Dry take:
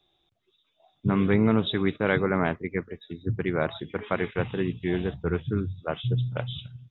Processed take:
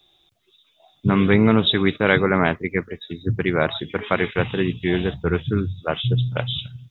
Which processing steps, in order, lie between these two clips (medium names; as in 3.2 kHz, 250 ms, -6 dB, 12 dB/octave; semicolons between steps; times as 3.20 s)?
treble shelf 2.6 kHz +9.5 dB; trim +5.5 dB